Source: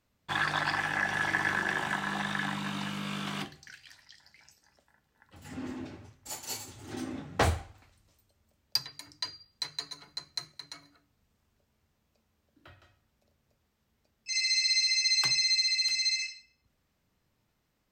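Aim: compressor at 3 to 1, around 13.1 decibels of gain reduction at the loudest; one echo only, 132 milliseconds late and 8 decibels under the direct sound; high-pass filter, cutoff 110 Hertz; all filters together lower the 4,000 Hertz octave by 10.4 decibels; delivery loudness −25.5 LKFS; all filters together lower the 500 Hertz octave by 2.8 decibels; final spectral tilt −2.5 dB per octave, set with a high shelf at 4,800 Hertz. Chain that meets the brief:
high-pass filter 110 Hz
parametric band 500 Hz −3.5 dB
parametric band 4,000 Hz −8 dB
high-shelf EQ 4,800 Hz −6.5 dB
downward compressor 3 to 1, threshold −42 dBFS
single-tap delay 132 ms −8 dB
level +17.5 dB

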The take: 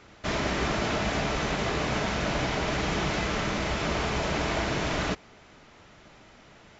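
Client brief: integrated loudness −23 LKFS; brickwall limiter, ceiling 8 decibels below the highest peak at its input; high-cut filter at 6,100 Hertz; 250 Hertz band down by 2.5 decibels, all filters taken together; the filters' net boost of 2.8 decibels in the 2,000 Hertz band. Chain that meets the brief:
low-pass filter 6,100 Hz
parametric band 250 Hz −3.5 dB
parametric band 2,000 Hz +3.5 dB
level +8.5 dB
brickwall limiter −14.5 dBFS

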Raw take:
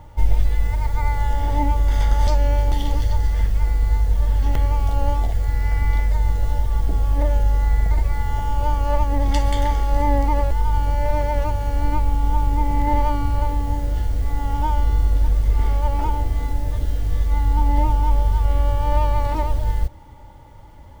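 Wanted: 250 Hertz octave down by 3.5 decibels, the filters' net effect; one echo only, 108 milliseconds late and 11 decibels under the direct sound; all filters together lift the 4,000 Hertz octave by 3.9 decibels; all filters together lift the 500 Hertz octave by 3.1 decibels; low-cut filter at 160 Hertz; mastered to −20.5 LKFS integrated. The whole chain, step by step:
high-pass filter 160 Hz
parametric band 250 Hz −5 dB
parametric band 500 Hz +4.5 dB
parametric band 4,000 Hz +5 dB
single-tap delay 108 ms −11 dB
level +7 dB

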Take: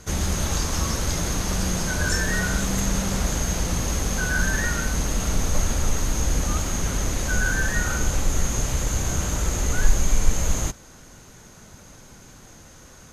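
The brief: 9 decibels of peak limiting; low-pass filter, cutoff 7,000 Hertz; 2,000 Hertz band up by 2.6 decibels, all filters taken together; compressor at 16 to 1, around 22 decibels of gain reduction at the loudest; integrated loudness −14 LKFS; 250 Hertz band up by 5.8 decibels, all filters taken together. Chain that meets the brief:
low-pass filter 7,000 Hz
parametric band 250 Hz +8 dB
parametric band 2,000 Hz +3.5 dB
downward compressor 16 to 1, threshold −31 dBFS
level +27 dB
brickwall limiter −3.5 dBFS

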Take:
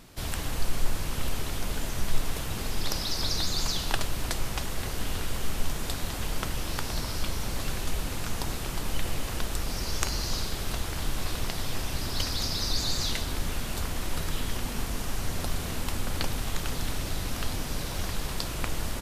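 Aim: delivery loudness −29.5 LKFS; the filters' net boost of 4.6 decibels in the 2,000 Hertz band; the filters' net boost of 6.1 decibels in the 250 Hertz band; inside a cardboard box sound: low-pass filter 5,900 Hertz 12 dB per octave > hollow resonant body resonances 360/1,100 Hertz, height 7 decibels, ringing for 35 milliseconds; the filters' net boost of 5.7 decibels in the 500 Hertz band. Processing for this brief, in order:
low-pass filter 5,900 Hz 12 dB per octave
parametric band 250 Hz +6.5 dB
parametric band 500 Hz +5 dB
parametric band 2,000 Hz +5.5 dB
hollow resonant body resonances 360/1,100 Hz, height 7 dB, ringing for 35 ms
level +0.5 dB

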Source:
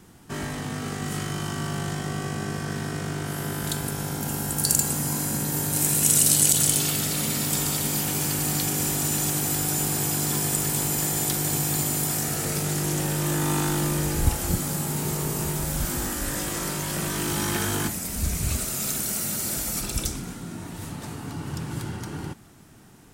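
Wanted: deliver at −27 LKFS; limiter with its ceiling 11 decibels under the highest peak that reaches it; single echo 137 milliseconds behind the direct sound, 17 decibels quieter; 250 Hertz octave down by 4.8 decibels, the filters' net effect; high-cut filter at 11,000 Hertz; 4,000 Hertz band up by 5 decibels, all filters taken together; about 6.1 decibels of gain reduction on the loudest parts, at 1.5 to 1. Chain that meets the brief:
low-pass filter 11,000 Hz
parametric band 250 Hz −8 dB
parametric band 4,000 Hz +6.5 dB
downward compressor 1.5 to 1, threshold −32 dBFS
brickwall limiter −19 dBFS
single-tap delay 137 ms −17 dB
level +2.5 dB

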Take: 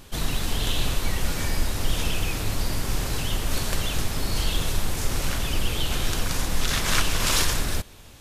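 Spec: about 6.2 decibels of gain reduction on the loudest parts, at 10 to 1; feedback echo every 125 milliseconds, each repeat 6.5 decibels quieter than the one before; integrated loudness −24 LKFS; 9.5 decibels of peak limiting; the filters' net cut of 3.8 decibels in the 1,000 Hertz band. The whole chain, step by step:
parametric band 1,000 Hz −5 dB
downward compressor 10 to 1, threshold −23 dBFS
brickwall limiter −22 dBFS
repeating echo 125 ms, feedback 47%, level −6.5 dB
level +9 dB

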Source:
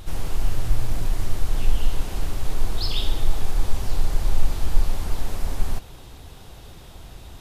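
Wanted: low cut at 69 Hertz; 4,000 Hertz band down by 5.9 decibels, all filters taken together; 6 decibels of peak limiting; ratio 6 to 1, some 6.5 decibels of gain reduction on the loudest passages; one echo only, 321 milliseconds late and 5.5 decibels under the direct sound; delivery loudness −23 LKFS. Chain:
high-pass filter 69 Hz
parametric band 4,000 Hz −7.5 dB
downward compressor 6 to 1, threshold −33 dBFS
brickwall limiter −31 dBFS
single-tap delay 321 ms −5.5 dB
level +18 dB

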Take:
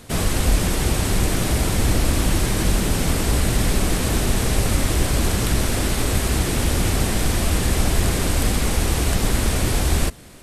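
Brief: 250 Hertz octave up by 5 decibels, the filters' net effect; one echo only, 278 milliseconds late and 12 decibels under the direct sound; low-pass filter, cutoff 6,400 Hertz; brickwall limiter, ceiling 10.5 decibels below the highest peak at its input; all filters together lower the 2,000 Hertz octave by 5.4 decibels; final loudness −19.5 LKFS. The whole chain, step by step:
low-pass filter 6,400 Hz
parametric band 250 Hz +6.5 dB
parametric band 2,000 Hz −7 dB
brickwall limiter −15 dBFS
single-tap delay 278 ms −12 dB
level +5.5 dB

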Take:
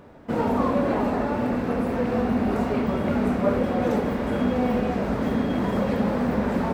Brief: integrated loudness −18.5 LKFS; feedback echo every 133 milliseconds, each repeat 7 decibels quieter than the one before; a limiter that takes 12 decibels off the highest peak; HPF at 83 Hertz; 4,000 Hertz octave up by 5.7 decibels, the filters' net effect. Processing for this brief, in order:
high-pass filter 83 Hz
parametric band 4,000 Hz +7.5 dB
brickwall limiter −22 dBFS
repeating echo 133 ms, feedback 45%, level −7 dB
level +11 dB

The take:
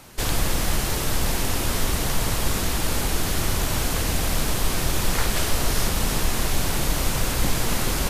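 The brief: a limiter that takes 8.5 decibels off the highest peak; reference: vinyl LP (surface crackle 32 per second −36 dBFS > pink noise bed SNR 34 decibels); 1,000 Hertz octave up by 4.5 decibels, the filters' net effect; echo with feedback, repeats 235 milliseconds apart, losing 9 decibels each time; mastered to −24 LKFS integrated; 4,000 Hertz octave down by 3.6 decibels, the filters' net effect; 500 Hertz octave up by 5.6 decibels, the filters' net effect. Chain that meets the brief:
parametric band 500 Hz +6 dB
parametric band 1,000 Hz +4 dB
parametric band 4,000 Hz −5 dB
brickwall limiter −14.5 dBFS
repeating echo 235 ms, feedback 35%, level −9 dB
surface crackle 32 per second −36 dBFS
pink noise bed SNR 34 dB
level +1.5 dB

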